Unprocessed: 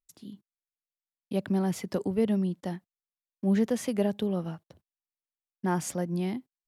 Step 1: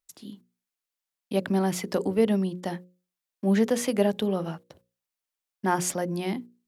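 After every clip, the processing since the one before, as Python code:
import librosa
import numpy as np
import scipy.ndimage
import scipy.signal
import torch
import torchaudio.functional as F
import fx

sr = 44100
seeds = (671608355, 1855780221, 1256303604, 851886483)

y = fx.low_shelf(x, sr, hz=220.0, db=-9.0)
y = fx.hum_notches(y, sr, base_hz=60, count=9)
y = y * 10.0 ** (7.0 / 20.0)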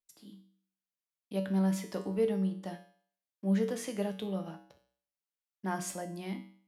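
y = fx.comb_fb(x, sr, f0_hz=64.0, decay_s=0.54, harmonics='odd', damping=0.0, mix_pct=80)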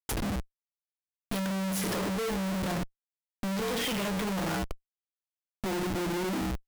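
y = fx.filter_sweep_lowpass(x, sr, from_hz=11000.0, to_hz=320.0, start_s=2.74, end_s=5.96, q=4.4)
y = fx.schmitt(y, sr, flips_db=-50.5)
y = y * 10.0 ** (4.5 / 20.0)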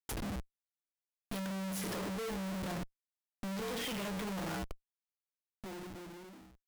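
y = fx.fade_out_tail(x, sr, length_s=1.94)
y = y * 10.0 ** (-7.5 / 20.0)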